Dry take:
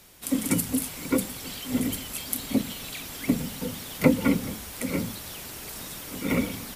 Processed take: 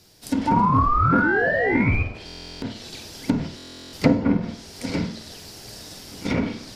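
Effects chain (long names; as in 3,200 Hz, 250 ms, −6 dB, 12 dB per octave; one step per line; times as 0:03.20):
sound drawn into the spectrogram rise, 0:00.47–0:02.03, 890–2,500 Hz −18 dBFS
noise gate −30 dBFS, range −7 dB
parametric band 4,900 Hz +13.5 dB 0.77 octaves
in parallel at −5 dB: decimation without filtering 37×
on the sum: flutter between parallel walls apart 8.4 metres, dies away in 0.38 s
treble cut that deepens with the level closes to 1,200 Hz, closed at −15 dBFS
on a send at −13.5 dB: convolution reverb RT60 0.70 s, pre-delay 3 ms
on the sum: buffer that repeats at 0:02.25/0:03.56, samples 1,024, times 15
highs frequency-modulated by the lows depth 0.14 ms
level −1 dB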